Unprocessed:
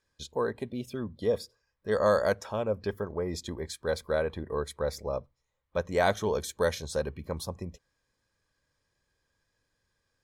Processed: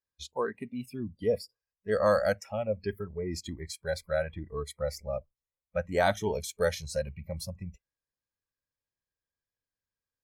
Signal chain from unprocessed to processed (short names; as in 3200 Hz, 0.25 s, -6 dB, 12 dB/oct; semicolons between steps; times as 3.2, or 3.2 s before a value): spectral noise reduction 19 dB